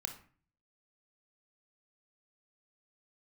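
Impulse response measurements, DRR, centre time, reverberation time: 5.0 dB, 13 ms, 0.40 s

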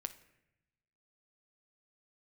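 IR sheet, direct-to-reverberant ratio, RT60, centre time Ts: 9.0 dB, 0.85 s, 5 ms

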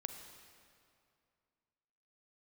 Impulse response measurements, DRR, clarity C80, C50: 6.0 dB, 7.5 dB, 6.5 dB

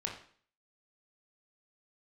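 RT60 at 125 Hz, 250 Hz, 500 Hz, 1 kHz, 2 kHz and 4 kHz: 0.50, 0.50, 0.50, 0.50, 0.50, 0.50 s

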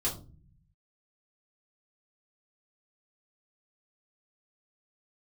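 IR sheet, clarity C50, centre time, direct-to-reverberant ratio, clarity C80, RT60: 10.0 dB, 21 ms, -6.5 dB, 15.5 dB, 0.40 s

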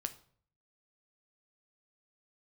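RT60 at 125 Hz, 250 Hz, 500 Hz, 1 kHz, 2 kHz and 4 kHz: 0.85, 0.60, 0.55, 0.50, 0.45, 0.40 s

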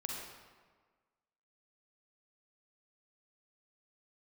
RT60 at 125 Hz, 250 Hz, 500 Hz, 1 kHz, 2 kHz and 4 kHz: 1.4, 1.5, 1.5, 1.5, 1.3, 1.0 s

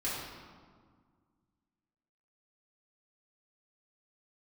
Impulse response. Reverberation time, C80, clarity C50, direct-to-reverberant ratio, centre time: 1.8 s, 1.5 dB, -1.0 dB, -10.0 dB, 96 ms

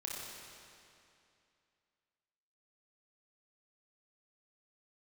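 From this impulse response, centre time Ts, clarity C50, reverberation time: 0.14 s, -1.5 dB, 2.6 s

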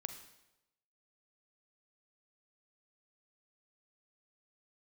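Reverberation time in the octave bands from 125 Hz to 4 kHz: 0.95, 0.90, 1.0, 0.90, 0.85, 0.80 s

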